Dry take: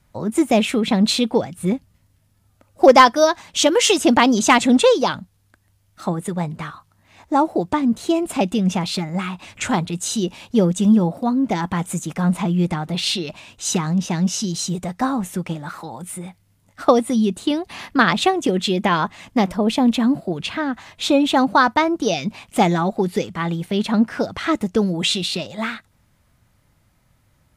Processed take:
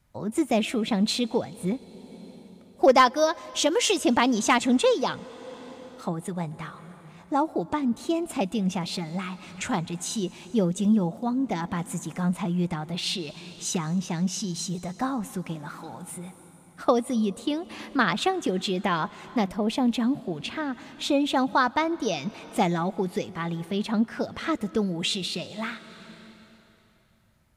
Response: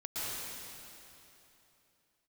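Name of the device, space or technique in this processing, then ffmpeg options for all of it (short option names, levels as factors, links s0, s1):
ducked reverb: -filter_complex "[0:a]asplit=3[s0][s1][s2];[1:a]atrim=start_sample=2205[s3];[s1][s3]afir=irnorm=-1:irlink=0[s4];[s2]apad=whole_len=1215609[s5];[s4][s5]sidechaincompress=threshold=0.0316:ratio=4:attack=32:release=543,volume=0.211[s6];[s0][s6]amix=inputs=2:normalize=0,volume=0.422"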